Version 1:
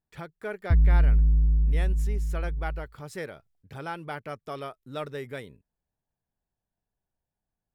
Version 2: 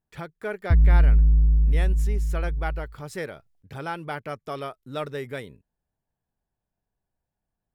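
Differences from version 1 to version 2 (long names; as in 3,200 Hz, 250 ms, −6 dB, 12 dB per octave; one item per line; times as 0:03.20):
speech +3.5 dB
background: send +11.5 dB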